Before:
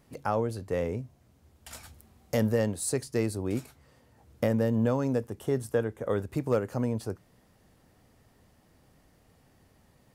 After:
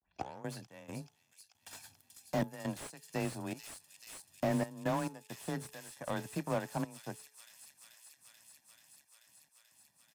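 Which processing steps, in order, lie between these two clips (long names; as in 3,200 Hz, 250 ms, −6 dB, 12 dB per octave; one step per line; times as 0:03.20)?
turntable start at the beginning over 0.42 s
comb filter 1.2 ms, depth 76%
noise gate with hold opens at −54 dBFS
gate pattern "x.x.xx.xxx" 68 BPM −12 dB
power curve on the samples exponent 1.4
high-pass filter 250 Hz 6 dB per octave
high-shelf EQ 2,600 Hz +8.5 dB
on a send: delay with a high-pass on its return 435 ms, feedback 81%, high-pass 3,700 Hz, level −9 dB
on the sum: frequency shifter +21 Hz
hum removal 430.9 Hz, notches 3
slew-rate limiting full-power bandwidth 30 Hz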